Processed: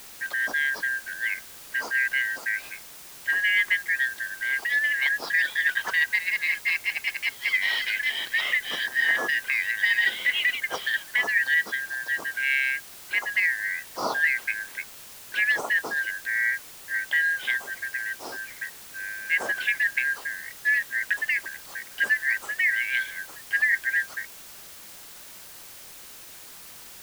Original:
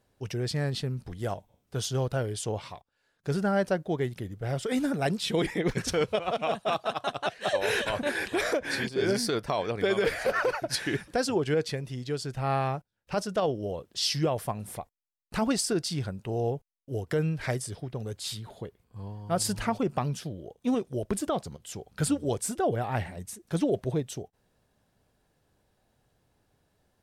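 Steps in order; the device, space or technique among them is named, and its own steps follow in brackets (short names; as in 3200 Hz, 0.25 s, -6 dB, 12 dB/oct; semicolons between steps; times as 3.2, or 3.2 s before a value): split-band scrambled radio (four-band scrambler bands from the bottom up 4123; BPF 340–2900 Hz; white noise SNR 17 dB); gain +4 dB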